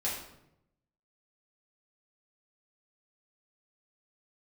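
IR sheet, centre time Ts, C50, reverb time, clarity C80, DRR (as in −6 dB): 45 ms, 3.0 dB, 0.80 s, 6.5 dB, −7.5 dB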